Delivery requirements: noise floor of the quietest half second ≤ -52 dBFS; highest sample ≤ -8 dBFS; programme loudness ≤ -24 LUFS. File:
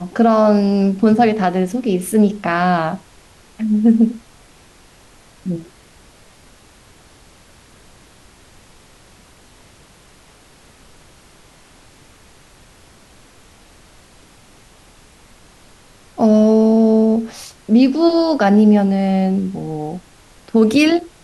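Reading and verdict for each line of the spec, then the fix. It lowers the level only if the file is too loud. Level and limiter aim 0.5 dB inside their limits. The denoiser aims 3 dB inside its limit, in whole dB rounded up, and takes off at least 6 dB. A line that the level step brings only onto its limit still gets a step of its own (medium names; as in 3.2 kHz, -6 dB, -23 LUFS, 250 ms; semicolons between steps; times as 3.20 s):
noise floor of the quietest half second -47 dBFS: fail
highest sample -3.0 dBFS: fail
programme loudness -15.0 LUFS: fail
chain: trim -9.5 dB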